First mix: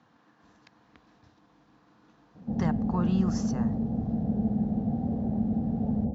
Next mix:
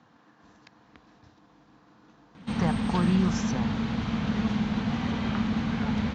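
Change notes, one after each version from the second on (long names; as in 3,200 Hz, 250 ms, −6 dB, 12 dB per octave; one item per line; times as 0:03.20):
speech +3.5 dB
background: remove Chebyshev low-pass filter 780 Hz, order 6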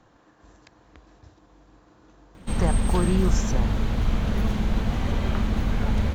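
master: remove loudspeaker in its box 140–5,800 Hz, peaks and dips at 160 Hz +3 dB, 230 Hz +5 dB, 360 Hz −8 dB, 580 Hz −7 dB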